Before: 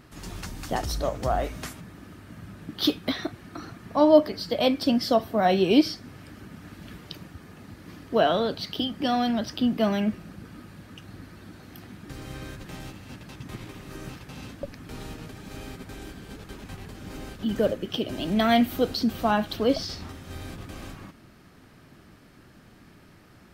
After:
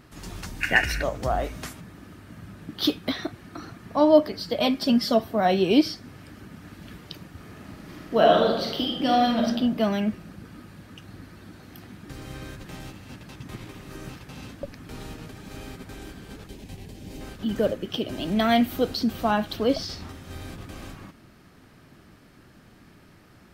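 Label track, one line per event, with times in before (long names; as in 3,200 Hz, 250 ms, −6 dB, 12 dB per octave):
0.610000	1.030000	gain on a spectral selection 1,400–2,900 Hz +20 dB
4.610000	5.200000	comb filter 4.9 ms
7.300000	9.470000	thrown reverb, RT60 1 s, DRR −1 dB
16.470000	17.210000	parametric band 1,300 Hz −14 dB 0.83 octaves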